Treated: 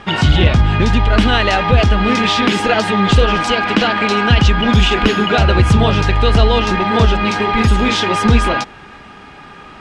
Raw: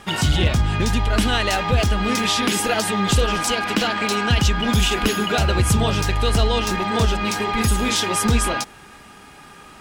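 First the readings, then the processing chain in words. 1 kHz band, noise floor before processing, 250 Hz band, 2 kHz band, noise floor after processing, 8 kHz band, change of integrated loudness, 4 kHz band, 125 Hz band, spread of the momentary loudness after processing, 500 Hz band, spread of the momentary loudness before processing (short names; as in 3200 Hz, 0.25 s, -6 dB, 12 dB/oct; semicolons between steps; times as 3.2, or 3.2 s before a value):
+7.0 dB, -44 dBFS, +7.0 dB, +6.5 dB, -38 dBFS, -6.0 dB, +6.0 dB, +4.5 dB, +7.0 dB, 3 LU, +7.0 dB, 3 LU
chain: LPF 3600 Hz 12 dB/oct; gain +7 dB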